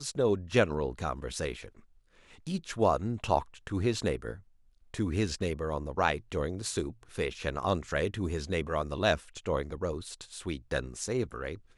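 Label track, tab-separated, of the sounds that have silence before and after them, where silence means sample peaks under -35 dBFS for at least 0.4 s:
2.470000	4.330000	sound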